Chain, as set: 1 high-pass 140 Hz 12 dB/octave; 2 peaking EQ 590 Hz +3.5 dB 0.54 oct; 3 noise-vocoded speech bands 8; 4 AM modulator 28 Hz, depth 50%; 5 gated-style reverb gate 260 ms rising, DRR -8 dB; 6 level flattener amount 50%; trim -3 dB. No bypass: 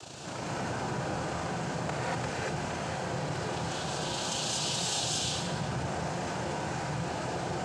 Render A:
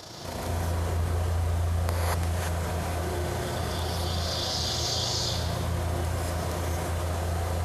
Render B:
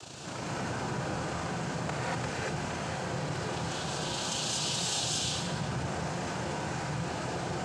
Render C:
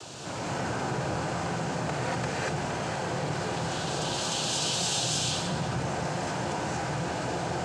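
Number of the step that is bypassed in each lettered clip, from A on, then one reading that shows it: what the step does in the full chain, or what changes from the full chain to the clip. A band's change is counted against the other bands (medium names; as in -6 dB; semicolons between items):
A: 3, momentary loudness spread change -1 LU; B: 2, 500 Hz band -1.5 dB; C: 4, loudness change +3.0 LU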